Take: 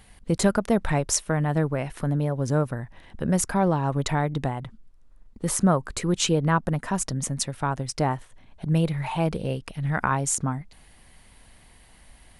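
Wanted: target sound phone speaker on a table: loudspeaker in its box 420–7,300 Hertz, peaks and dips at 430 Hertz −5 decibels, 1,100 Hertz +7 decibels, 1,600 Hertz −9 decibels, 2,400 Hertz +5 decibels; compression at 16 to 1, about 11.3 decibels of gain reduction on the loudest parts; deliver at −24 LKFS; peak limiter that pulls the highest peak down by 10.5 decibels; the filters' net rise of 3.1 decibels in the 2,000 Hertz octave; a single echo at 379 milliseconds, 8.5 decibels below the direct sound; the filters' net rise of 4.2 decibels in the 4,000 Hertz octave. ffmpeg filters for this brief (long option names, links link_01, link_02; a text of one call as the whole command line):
ffmpeg -i in.wav -af "equalizer=frequency=2000:width_type=o:gain=6.5,equalizer=frequency=4000:width_type=o:gain=3,acompressor=threshold=-26dB:ratio=16,alimiter=limit=-22dB:level=0:latency=1,highpass=frequency=420:width=0.5412,highpass=frequency=420:width=1.3066,equalizer=frequency=430:width_type=q:width=4:gain=-5,equalizer=frequency=1100:width_type=q:width=4:gain=7,equalizer=frequency=1600:width_type=q:width=4:gain=-9,equalizer=frequency=2400:width_type=q:width=4:gain=5,lowpass=frequency=7300:width=0.5412,lowpass=frequency=7300:width=1.3066,aecho=1:1:379:0.376,volume=13dB" out.wav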